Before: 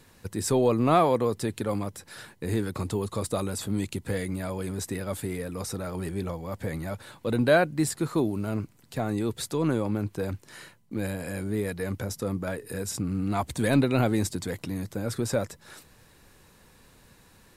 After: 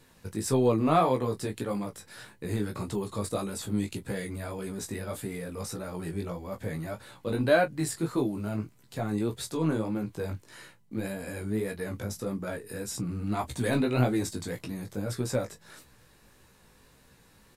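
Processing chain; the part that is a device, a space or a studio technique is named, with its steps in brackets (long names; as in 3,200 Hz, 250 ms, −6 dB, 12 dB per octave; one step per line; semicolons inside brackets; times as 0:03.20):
double-tracked vocal (double-tracking delay 24 ms −12 dB; chorus effect 1.7 Hz, delay 15 ms, depth 4.6 ms)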